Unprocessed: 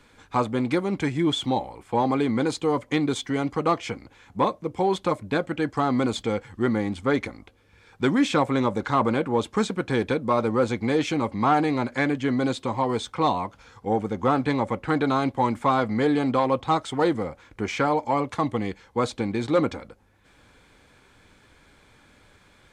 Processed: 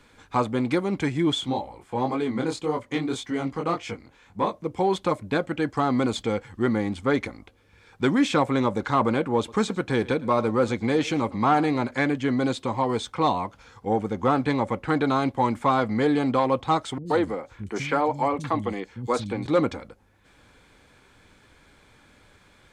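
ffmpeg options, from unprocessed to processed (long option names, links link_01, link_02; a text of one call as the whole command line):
ffmpeg -i in.wav -filter_complex "[0:a]asplit=3[link_01][link_02][link_03];[link_01]afade=type=out:start_time=1.4:duration=0.02[link_04];[link_02]flanger=delay=18.5:depth=6.5:speed=1.8,afade=type=in:start_time=1.4:duration=0.02,afade=type=out:start_time=4.51:duration=0.02[link_05];[link_03]afade=type=in:start_time=4.51:duration=0.02[link_06];[link_04][link_05][link_06]amix=inputs=3:normalize=0,asettb=1/sr,asplit=3[link_07][link_08][link_09];[link_07]atrim=end=9.374[link_10];[link_08]atrim=start=9.37:end=11.91,asetpts=PTS-STARTPTS,afade=type=in:duration=0.004:curve=qsin,afade=type=out:start_time=2.536:duration=0.004:curve=qsin,aecho=1:1:110:0.0891,atrim=end_sample=112014[link_11];[link_09]atrim=start=11.906[link_12];[link_10][link_11]acrossfade=duration=0.004:curve1=hsin:curve2=qsin[link_13];[link_13][link_12]acrossfade=duration=0.004:curve1=qsin:curve2=hsin,asettb=1/sr,asplit=3[link_14][link_15][link_16];[link_14]atrim=end=16.984[link_17];[link_15]atrim=start=16.98:end=19.46,asetpts=PTS-STARTPTS,afade=type=in:duration=0.004:curve=qsin,afade=type=out:start_time=2.476:duration=0.004:curve=qsin,acrossover=split=210|4000[link_18][link_19][link_20];[link_20]adelay=80[link_21];[link_19]adelay=120[link_22];[link_18][link_22][link_21]amix=inputs=3:normalize=0,atrim=end_sample=109368[link_23];[link_16]atrim=start=19.456[link_24];[link_17][link_23]acrossfade=duration=0.004:curve1=hsin:curve2=qsin[link_25];[link_25][link_24]acrossfade=duration=0.004:curve1=qsin:curve2=hsin" out.wav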